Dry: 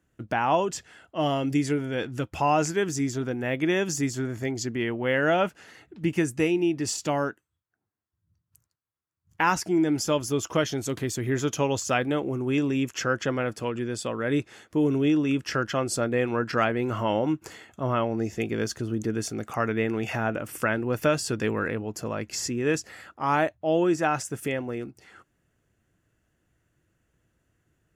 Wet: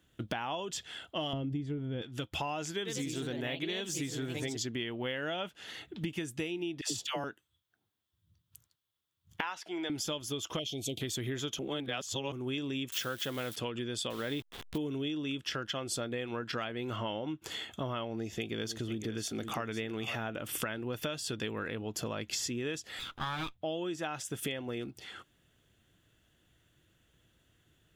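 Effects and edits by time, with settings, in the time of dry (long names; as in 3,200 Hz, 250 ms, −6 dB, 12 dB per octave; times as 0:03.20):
0:01.33–0:02.02: spectral tilt −4.5 dB per octave
0:02.75–0:04.68: delay with pitch and tempo change per echo 100 ms, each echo +2 semitones, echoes 2, each echo −6 dB
0:06.81–0:07.24: all-pass dispersion lows, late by 105 ms, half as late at 730 Hz
0:09.41–0:09.90: three-way crossover with the lows and the highs turned down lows −22 dB, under 460 Hz, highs −12 dB, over 4,400 Hz
0:10.59–0:11.01: elliptic band-stop filter 730–2,400 Hz
0:11.59–0:12.32: reverse
0:12.92–0:13.56: spike at every zero crossing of −30 dBFS
0:14.10–0:14.78: hold until the input has moved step −39.5 dBFS
0:16.96–0:17.42: high-frequency loss of the air 70 metres
0:18.13–0:20.16: single-tap delay 505 ms −12 dB
0:22.99–0:23.62: lower of the sound and its delayed copy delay 0.81 ms
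whole clip: parametric band 3,400 Hz +15 dB 0.54 octaves; downward compressor 12 to 1, threshold −34 dBFS; high-shelf EQ 12,000 Hz +7.5 dB; level +1 dB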